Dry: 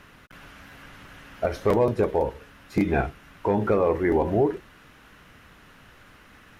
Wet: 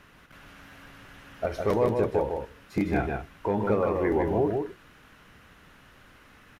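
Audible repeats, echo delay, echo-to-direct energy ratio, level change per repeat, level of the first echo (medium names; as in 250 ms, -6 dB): 1, 155 ms, -4.5 dB, no regular repeats, -4.5 dB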